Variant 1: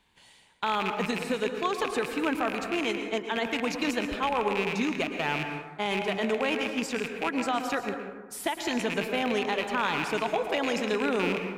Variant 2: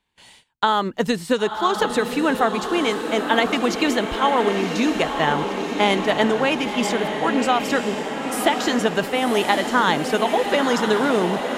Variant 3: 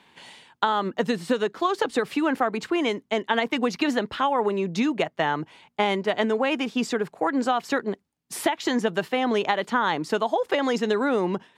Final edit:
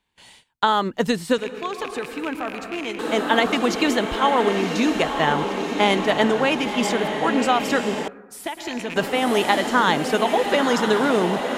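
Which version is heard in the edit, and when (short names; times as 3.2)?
2
1.38–2.99 from 1
8.08–8.96 from 1
not used: 3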